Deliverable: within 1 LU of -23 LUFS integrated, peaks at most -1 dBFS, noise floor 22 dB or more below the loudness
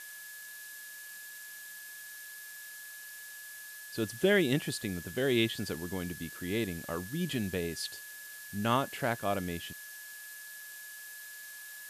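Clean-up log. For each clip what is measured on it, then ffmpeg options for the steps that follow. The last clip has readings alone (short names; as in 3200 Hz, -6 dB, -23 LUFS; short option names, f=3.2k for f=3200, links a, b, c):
steady tone 1700 Hz; tone level -47 dBFS; noise floor -47 dBFS; noise floor target -58 dBFS; loudness -35.5 LUFS; peak -14.5 dBFS; loudness target -23.0 LUFS
-> -af "bandreject=f=1.7k:w=30"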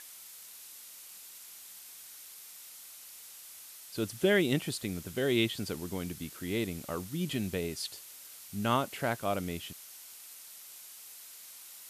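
steady tone none; noise floor -50 dBFS; noise floor target -55 dBFS
-> -af "afftdn=nr=6:nf=-50"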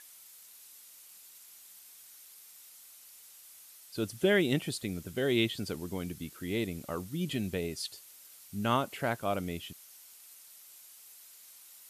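noise floor -55 dBFS; loudness -33.0 LUFS; peak -14.5 dBFS; loudness target -23.0 LUFS
-> -af "volume=10dB"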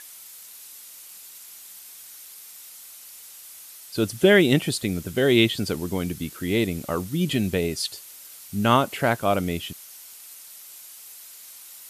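loudness -23.0 LUFS; peak -4.5 dBFS; noise floor -45 dBFS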